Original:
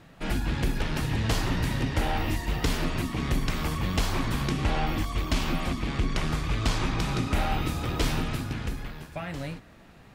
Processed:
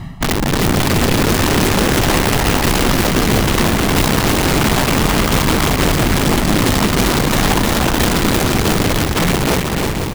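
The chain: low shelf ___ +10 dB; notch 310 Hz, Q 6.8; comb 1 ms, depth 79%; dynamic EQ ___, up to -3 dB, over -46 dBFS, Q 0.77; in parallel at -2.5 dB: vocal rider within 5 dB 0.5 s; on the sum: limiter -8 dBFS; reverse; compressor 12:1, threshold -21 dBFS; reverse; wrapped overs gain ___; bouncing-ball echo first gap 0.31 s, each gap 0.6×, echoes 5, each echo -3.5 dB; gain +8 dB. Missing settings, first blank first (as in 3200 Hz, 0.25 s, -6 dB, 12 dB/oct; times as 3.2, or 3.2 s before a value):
400 Hz, 6100 Hz, 20 dB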